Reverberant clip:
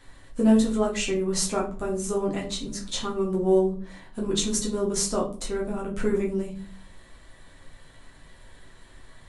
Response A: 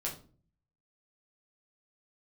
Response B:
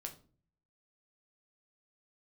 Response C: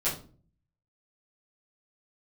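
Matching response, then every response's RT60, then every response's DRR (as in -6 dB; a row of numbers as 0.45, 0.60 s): A; 0.40, 0.40, 0.40 s; -4.0, 2.5, -12.0 dB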